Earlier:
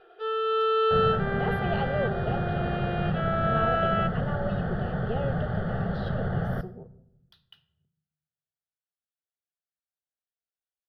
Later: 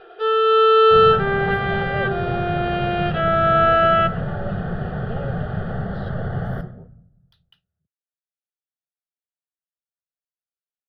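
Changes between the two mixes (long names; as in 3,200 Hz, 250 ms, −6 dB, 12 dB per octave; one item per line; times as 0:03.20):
speech: send off
first sound +10.5 dB
second sound: send +8.0 dB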